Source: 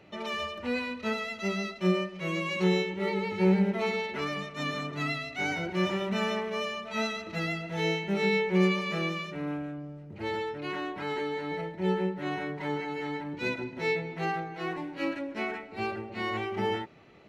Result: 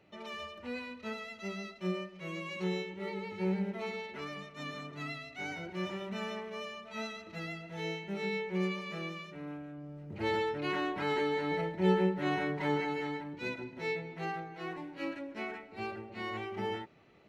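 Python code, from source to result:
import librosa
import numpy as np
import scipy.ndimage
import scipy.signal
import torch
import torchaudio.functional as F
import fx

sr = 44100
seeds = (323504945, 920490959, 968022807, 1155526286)

y = fx.gain(x, sr, db=fx.line((9.67, -9.0), (10.13, 1.0), (12.86, 1.0), (13.34, -6.5)))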